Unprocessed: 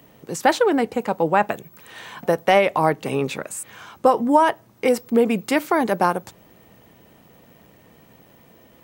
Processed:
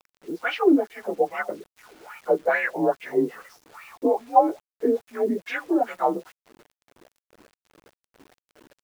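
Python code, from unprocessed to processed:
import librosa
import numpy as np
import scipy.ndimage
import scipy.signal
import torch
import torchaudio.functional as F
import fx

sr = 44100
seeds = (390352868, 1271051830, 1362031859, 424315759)

y = fx.partial_stretch(x, sr, pct=89)
y = fx.wah_lfo(y, sr, hz=2.4, low_hz=300.0, high_hz=2500.0, q=4.9)
y = fx.quant_dither(y, sr, seeds[0], bits=10, dither='none')
y = y * 10.0 ** (8.0 / 20.0)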